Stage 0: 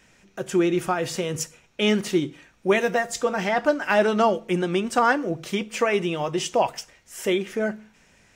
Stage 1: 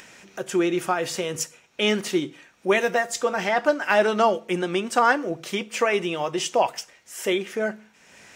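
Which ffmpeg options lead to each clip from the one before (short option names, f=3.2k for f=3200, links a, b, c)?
-af "highpass=f=330:p=1,acompressor=mode=upward:threshold=-40dB:ratio=2.5,volume=1.5dB"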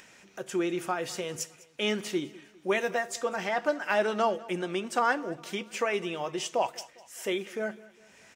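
-af "aecho=1:1:202|404|606:0.0891|0.041|0.0189,volume=-7dB"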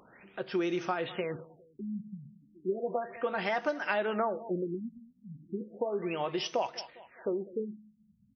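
-af "acompressor=threshold=-28dB:ratio=6,afftfilt=real='re*lt(b*sr/1024,220*pow(6500/220,0.5+0.5*sin(2*PI*0.34*pts/sr)))':imag='im*lt(b*sr/1024,220*pow(6500/220,0.5+0.5*sin(2*PI*0.34*pts/sr)))':win_size=1024:overlap=0.75,volume=1.5dB"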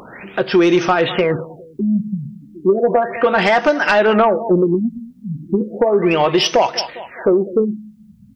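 -filter_complex "[0:a]asplit=2[a][b];[b]alimiter=level_in=2.5dB:limit=-24dB:level=0:latency=1:release=371,volume=-2.5dB,volume=-2dB[c];[a][c]amix=inputs=2:normalize=0,aeval=exprs='0.224*sin(PI/2*1.78*val(0)/0.224)':c=same,volume=7dB"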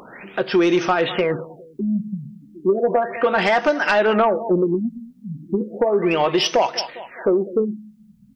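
-af "equalizer=f=83:w=1.7:g=-13.5,volume=-3.5dB"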